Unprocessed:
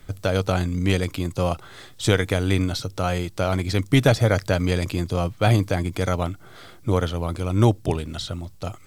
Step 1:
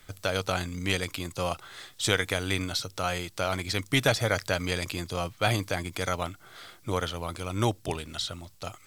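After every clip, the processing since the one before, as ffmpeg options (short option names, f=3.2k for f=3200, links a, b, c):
-af "tiltshelf=f=670:g=-6,volume=-5.5dB"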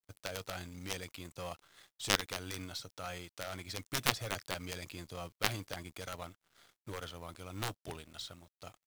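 -af "aeval=exprs='sgn(val(0))*max(abs(val(0))-0.00447,0)':c=same,acrusher=bits=4:mode=log:mix=0:aa=0.000001,aeval=exprs='0.422*(cos(1*acos(clip(val(0)/0.422,-1,1)))-cos(1*PI/2))+0.188*(cos(3*acos(clip(val(0)/0.422,-1,1)))-cos(3*PI/2))':c=same,volume=-1dB"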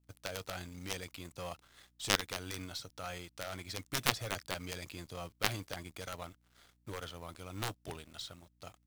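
-af "aeval=exprs='val(0)+0.000282*(sin(2*PI*60*n/s)+sin(2*PI*2*60*n/s)/2+sin(2*PI*3*60*n/s)/3+sin(2*PI*4*60*n/s)/4+sin(2*PI*5*60*n/s)/5)':c=same"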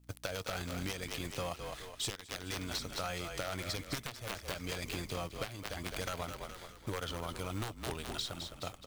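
-filter_complex "[0:a]asplit=2[a][b];[b]asplit=5[c][d][e][f][g];[c]adelay=210,afreqshift=-38,volume=-10dB[h];[d]adelay=420,afreqshift=-76,volume=-16.9dB[i];[e]adelay=630,afreqshift=-114,volume=-23.9dB[j];[f]adelay=840,afreqshift=-152,volume=-30.8dB[k];[g]adelay=1050,afreqshift=-190,volume=-37.7dB[l];[h][i][j][k][l]amix=inputs=5:normalize=0[m];[a][m]amix=inputs=2:normalize=0,acompressor=threshold=-43dB:ratio=16,volume=35dB,asoftclip=hard,volume=-35dB,volume=9.5dB"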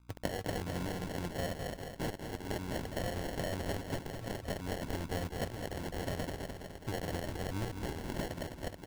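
-filter_complex "[0:a]acrossover=split=670[a][b];[b]acrusher=bits=6:mix=0:aa=0.000001[c];[a][c]amix=inputs=2:normalize=0,aecho=1:1:209|418|627|836|1045|1254|1463:0.447|0.255|0.145|0.0827|0.0472|0.0269|0.0153,acrusher=samples=36:mix=1:aa=0.000001,volume=1dB"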